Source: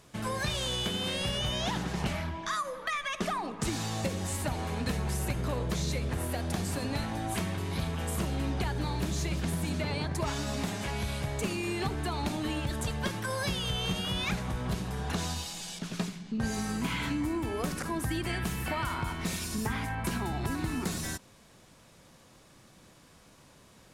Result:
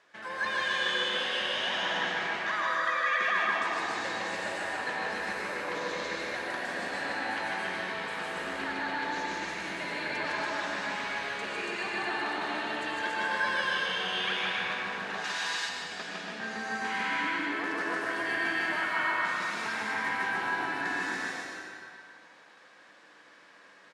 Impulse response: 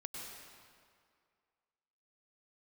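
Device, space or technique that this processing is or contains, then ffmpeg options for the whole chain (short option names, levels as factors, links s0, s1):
station announcement: -filter_complex "[0:a]highpass=480,lowpass=4400,equalizer=f=1700:t=o:w=0.49:g=11,aecho=1:1:157.4|282.8:0.794|0.794[s0];[1:a]atrim=start_sample=2205[s1];[s0][s1]afir=irnorm=-1:irlink=0,asettb=1/sr,asplit=3[s2][s3][s4];[s2]atrim=end=15.244[s5];[s3]atrim=start=15.24:end=15.69,asetpts=PTS-STARTPTS,afade=t=in:d=0.004:c=qsin,afade=t=out:st=0.446:d=0.004:c=qsin,tiltshelf=f=1200:g=-7.5[s6];[s4]atrim=start=15.686[s7];[s5][s6]acrossfade=d=0.004:c1=hsin:c2=qsin[s8];[s8][s7]acrossfade=d=0.004:c1=qsin:c2=hsin,aecho=1:1:147:0.473"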